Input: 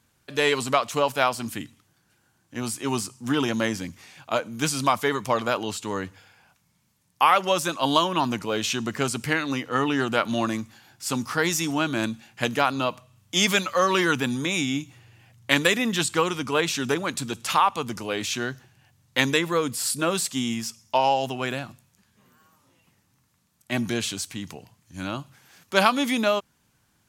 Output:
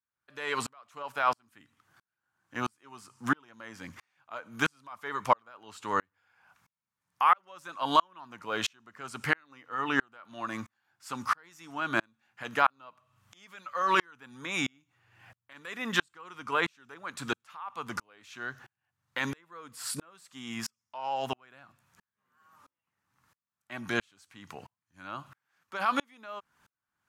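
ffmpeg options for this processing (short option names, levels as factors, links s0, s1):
-filter_complex "[0:a]equalizer=f=1300:w=0.76:g=14.5,asplit=2[s0][s1];[s1]acompressor=threshold=0.0447:ratio=6,volume=0.75[s2];[s0][s2]amix=inputs=2:normalize=0,alimiter=limit=0.75:level=0:latency=1:release=32,aeval=exprs='val(0)*pow(10,-40*if(lt(mod(-1.5*n/s,1),2*abs(-1.5)/1000),1-mod(-1.5*n/s,1)/(2*abs(-1.5)/1000),(mod(-1.5*n/s,1)-2*abs(-1.5)/1000)/(1-2*abs(-1.5)/1000))/20)':c=same,volume=0.447"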